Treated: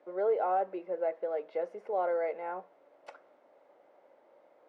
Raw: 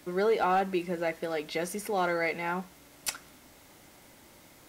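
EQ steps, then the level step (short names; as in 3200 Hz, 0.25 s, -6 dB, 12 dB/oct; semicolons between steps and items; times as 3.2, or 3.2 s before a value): ladder band-pass 620 Hz, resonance 55%; +6.5 dB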